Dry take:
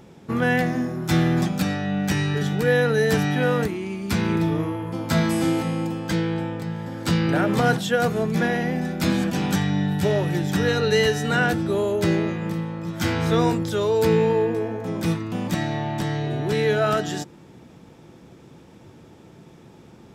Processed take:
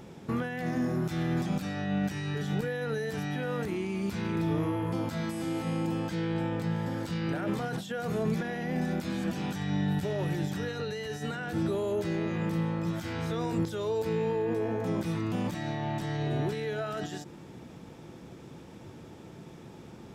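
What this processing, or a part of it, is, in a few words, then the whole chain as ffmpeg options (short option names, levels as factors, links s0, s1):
de-esser from a sidechain: -filter_complex "[0:a]asplit=2[s0][s1];[s1]highpass=f=5500:p=1,apad=whole_len=888455[s2];[s0][s2]sidechaincompress=threshold=0.00501:ratio=8:attack=1:release=38"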